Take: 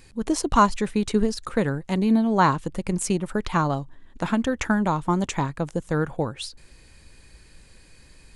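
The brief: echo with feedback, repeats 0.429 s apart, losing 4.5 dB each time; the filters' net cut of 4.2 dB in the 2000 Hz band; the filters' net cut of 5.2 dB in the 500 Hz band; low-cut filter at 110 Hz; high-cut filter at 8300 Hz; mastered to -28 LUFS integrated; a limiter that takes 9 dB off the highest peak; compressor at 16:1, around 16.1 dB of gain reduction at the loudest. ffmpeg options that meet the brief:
-af "highpass=110,lowpass=8.3k,equalizer=f=500:t=o:g=-6.5,equalizer=f=2k:t=o:g=-5.5,acompressor=threshold=-32dB:ratio=16,alimiter=level_in=5.5dB:limit=-24dB:level=0:latency=1,volume=-5.5dB,aecho=1:1:429|858|1287|1716|2145|2574|3003|3432|3861:0.596|0.357|0.214|0.129|0.0772|0.0463|0.0278|0.0167|0.01,volume=10dB"

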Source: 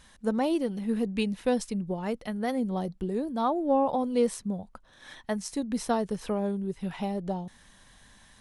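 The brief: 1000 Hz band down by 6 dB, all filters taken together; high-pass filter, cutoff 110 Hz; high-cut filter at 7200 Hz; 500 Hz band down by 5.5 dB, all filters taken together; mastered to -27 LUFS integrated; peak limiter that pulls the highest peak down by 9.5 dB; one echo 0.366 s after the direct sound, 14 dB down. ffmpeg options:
-af "highpass=110,lowpass=7.2k,equalizer=f=500:t=o:g=-5,equalizer=f=1k:t=o:g=-6,alimiter=level_in=2.5dB:limit=-24dB:level=0:latency=1,volume=-2.5dB,aecho=1:1:366:0.2,volume=8.5dB"

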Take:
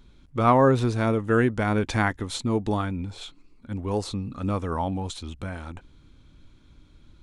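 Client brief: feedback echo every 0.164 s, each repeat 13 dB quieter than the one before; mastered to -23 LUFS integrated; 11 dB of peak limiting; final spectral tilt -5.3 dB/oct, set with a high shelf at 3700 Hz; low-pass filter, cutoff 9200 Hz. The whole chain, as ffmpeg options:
-af "lowpass=9.2k,highshelf=f=3.7k:g=8.5,alimiter=limit=-17.5dB:level=0:latency=1,aecho=1:1:164|328|492:0.224|0.0493|0.0108,volume=5.5dB"

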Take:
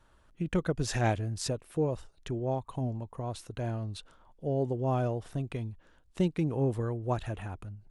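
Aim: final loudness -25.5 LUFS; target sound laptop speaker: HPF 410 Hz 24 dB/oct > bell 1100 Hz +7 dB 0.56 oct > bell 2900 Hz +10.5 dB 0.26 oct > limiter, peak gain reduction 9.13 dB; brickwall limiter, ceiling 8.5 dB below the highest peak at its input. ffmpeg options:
-af "alimiter=level_in=0.5dB:limit=-24dB:level=0:latency=1,volume=-0.5dB,highpass=f=410:w=0.5412,highpass=f=410:w=1.3066,equalizer=f=1.1k:t=o:w=0.56:g=7,equalizer=f=2.9k:t=o:w=0.26:g=10.5,volume=17dB,alimiter=limit=-13.5dB:level=0:latency=1"

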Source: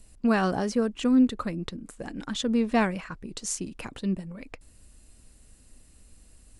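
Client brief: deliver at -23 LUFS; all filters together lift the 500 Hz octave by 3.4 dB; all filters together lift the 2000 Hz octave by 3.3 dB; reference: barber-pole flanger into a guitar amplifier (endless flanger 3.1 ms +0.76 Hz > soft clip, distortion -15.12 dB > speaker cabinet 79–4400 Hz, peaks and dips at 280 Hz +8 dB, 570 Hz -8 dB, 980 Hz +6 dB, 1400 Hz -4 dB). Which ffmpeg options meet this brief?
-filter_complex "[0:a]equalizer=f=500:t=o:g=6,equalizer=f=2k:t=o:g=5.5,asplit=2[a][b];[b]adelay=3.1,afreqshift=0.76[c];[a][c]amix=inputs=2:normalize=1,asoftclip=threshold=-17.5dB,highpass=79,equalizer=f=280:t=q:w=4:g=8,equalizer=f=570:t=q:w=4:g=-8,equalizer=f=980:t=q:w=4:g=6,equalizer=f=1.4k:t=q:w=4:g=-4,lowpass=f=4.4k:w=0.5412,lowpass=f=4.4k:w=1.3066,volume=6.5dB"

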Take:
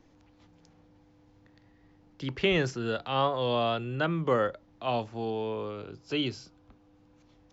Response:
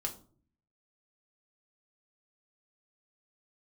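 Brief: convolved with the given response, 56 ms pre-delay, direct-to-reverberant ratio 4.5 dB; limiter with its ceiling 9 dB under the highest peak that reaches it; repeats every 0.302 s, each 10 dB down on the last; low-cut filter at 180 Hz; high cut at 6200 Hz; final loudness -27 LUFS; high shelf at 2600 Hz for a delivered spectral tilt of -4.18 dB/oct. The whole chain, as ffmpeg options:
-filter_complex "[0:a]highpass=180,lowpass=6.2k,highshelf=f=2.6k:g=-5.5,alimiter=limit=-24dB:level=0:latency=1,aecho=1:1:302|604|906|1208:0.316|0.101|0.0324|0.0104,asplit=2[a][b];[1:a]atrim=start_sample=2205,adelay=56[c];[b][c]afir=irnorm=-1:irlink=0,volume=-5.5dB[d];[a][d]amix=inputs=2:normalize=0,volume=6dB"

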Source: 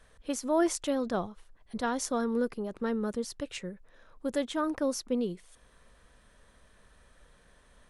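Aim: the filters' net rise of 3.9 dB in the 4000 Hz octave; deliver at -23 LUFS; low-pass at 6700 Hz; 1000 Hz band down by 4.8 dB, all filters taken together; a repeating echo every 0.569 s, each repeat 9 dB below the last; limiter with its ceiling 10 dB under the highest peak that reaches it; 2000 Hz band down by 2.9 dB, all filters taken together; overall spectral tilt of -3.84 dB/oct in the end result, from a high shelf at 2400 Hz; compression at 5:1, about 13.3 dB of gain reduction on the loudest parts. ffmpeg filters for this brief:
-af "lowpass=6.7k,equalizer=f=1k:t=o:g=-6.5,equalizer=f=2k:t=o:g=-3.5,highshelf=f=2.4k:g=3,equalizer=f=4k:t=o:g=4.5,acompressor=threshold=-38dB:ratio=5,alimiter=level_in=11dB:limit=-24dB:level=0:latency=1,volume=-11dB,aecho=1:1:569|1138|1707|2276:0.355|0.124|0.0435|0.0152,volume=22dB"

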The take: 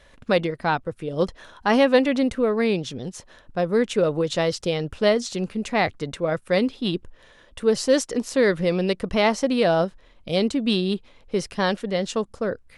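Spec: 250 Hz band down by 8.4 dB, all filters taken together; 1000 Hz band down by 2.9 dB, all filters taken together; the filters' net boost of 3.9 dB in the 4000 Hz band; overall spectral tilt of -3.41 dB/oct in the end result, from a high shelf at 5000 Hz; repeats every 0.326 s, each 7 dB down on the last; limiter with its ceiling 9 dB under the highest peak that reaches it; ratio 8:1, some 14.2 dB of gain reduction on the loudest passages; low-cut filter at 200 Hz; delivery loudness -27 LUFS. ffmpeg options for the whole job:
-af "highpass=200,equalizer=f=250:t=o:g=-8,equalizer=f=1k:t=o:g=-3.5,equalizer=f=4k:t=o:g=6.5,highshelf=f=5k:g=-3.5,acompressor=threshold=-30dB:ratio=8,alimiter=limit=-24dB:level=0:latency=1,aecho=1:1:326|652|978|1304|1630:0.447|0.201|0.0905|0.0407|0.0183,volume=8.5dB"

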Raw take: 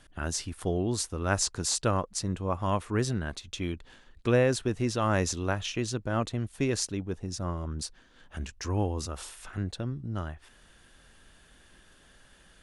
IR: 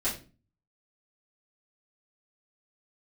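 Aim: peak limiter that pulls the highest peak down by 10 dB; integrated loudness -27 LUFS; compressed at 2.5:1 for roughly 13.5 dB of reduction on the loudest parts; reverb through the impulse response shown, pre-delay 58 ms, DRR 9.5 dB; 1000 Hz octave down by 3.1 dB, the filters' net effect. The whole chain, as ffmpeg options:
-filter_complex "[0:a]equalizer=f=1k:t=o:g=-4,acompressor=threshold=-40dB:ratio=2.5,alimiter=level_in=6dB:limit=-24dB:level=0:latency=1,volume=-6dB,asplit=2[a][b];[1:a]atrim=start_sample=2205,adelay=58[c];[b][c]afir=irnorm=-1:irlink=0,volume=-16.5dB[d];[a][d]amix=inputs=2:normalize=0,volume=14.5dB"

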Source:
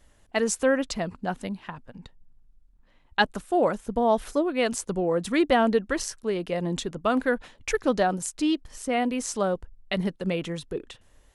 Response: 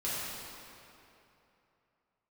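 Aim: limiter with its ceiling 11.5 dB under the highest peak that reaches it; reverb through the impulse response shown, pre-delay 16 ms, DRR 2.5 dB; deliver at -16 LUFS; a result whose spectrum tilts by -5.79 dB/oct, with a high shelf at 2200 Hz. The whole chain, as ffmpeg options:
-filter_complex "[0:a]highshelf=f=2.2k:g=-7.5,alimiter=limit=-21.5dB:level=0:latency=1,asplit=2[a][b];[1:a]atrim=start_sample=2205,adelay=16[c];[b][c]afir=irnorm=-1:irlink=0,volume=-9dB[d];[a][d]amix=inputs=2:normalize=0,volume=14dB"

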